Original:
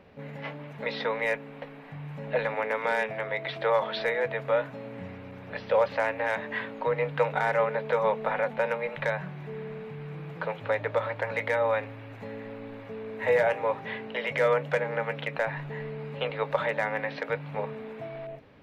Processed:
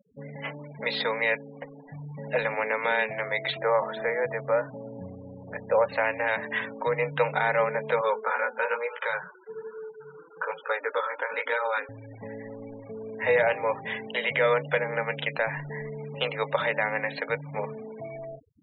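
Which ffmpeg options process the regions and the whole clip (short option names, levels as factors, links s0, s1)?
-filter_complex "[0:a]asettb=1/sr,asplit=3[s0][s1][s2];[s0]atrim=end=3.594[s3];[s1]atrim=start=3.59:end=5.89,asetpts=PTS-STARTPTS,afade=t=in:d=0.004:c=qsin,afade=t=out:st=2.296:d=0.004:c=qsin,lowpass=1900,aemphasis=mode=reproduction:type=50fm[s4];[s2]atrim=start=5.886[s5];[s3][s4]acrossfade=d=0.004:c1=hsin:c2=qsin[s6];[s6][s5]acrossfade=d=0.004:c1=qsin:c2=hsin,asettb=1/sr,asplit=3[s7][s8][s9];[s7]atrim=end=8.014[s10];[s8]atrim=start=8.01:end=11.89,asetpts=PTS-STARTPTS,afade=t=in:d=0.004:c=qsin,afade=t=out:st=3.876:d=0.004:c=qsin,flanger=delay=16:depth=8:speed=1.1,highpass=370,equalizer=f=460:t=q:w=4:g=6,equalizer=f=660:t=q:w=4:g=-7,equalizer=f=960:t=q:w=4:g=4,equalizer=f=1400:t=q:w=4:g=9,equalizer=f=2000:t=q:w=4:g=-3,equalizer=f=3300:t=q:w=4:g=5,lowpass=f=4600:w=0.5412,lowpass=f=4600:w=1.3066[s11];[s9]atrim=start=11.886[s12];[s10][s11]acrossfade=d=0.004:c1=hsin:c2=qsin[s13];[s13][s12]acrossfade=d=0.004:c1=qsin:c2=hsin,afftfilt=real='re*gte(hypot(re,im),0.0112)':imag='im*gte(hypot(re,im),0.0112)':win_size=1024:overlap=0.75,equalizer=f=4900:w=0.54:g=9"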